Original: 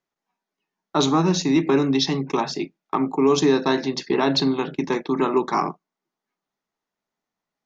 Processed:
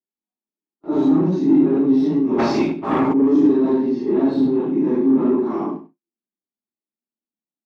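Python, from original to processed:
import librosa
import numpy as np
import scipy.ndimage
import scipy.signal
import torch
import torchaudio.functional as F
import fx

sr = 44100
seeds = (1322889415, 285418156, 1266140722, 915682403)

p1 = fx.phase_scramble(x, sr, seeds[0], window_ms=200)
p2 = fx.leveller(p1, sr, passes=3)
p3 = fx.bandpass_q(p2, sr, hz=260.0, q=2.1)
p4 = p3 + fx.echo_single(p3, sr, ms=97, db=-15.0, dry=0)
p5 = fx.rev_gated(p4, sr, seeds[1], gate_ms=90, shape='falling', drr_db=7.0)
y = fx.spectral_comp(p5, sr, ratio=2.0, at=(2.38, 3.12), fade=0.02)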